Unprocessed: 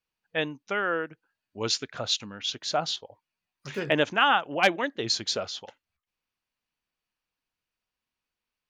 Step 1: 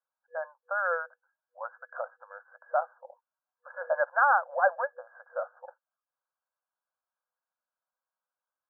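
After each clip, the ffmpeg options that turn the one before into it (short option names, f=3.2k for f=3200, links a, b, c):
-af "afftfilt=real='re*between(b*sr/4096,490,1700)':imag='im*between(b*sr/4096,490,1700)':win_size=4096:overlap=0.75"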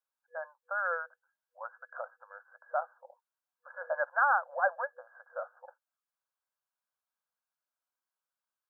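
-af "tiltshelf=f=970:g=-3.5,volume=-4dB"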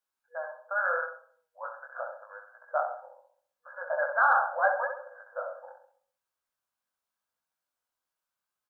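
-filter_complex "[0:a]asplit=2[a][b];[b]adelay=66,lowpass=f=1.3k:p=1,volume=-4dB,asplit=2[c][d];[d]adelay=66,lowpass=f=1.3k:p=1,volume=0.52,asplit=2[e][f];[f]adelay=66,lowpass=f=1.3k:p=1,volume=0.52,asplit=2[g][h];[h]adelay=66,lowpass=f=1.3k:p=1,volume=0.52,asplit=2[i][j];[j]adelay=66,lowpass=f=1.3k:p=1,volume=0.52,asplit=2[k][l];[l]adelay=66,lowpass=f=1.3k:p=1,volume=0.52,asplit=2[m][n];[n]adelay=66,lowpass=f=1.3k:p=1,volume=0.52[o];[a][c][e][g][i][k][m][o]amix=inputs=8:normalize=0,flanger=delay=17:depth=6.8:speed=0.8,acontrast=53"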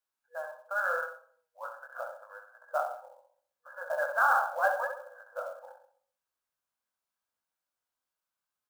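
-af "acrusher=bits=6:mode=log:mix=0:aa=0.000001,volume=-2dB"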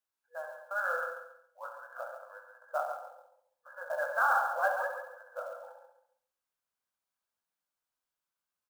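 -af "aecho=1:1:138|276|414:0.398|0.111|0.0312,volume=-2.5dB"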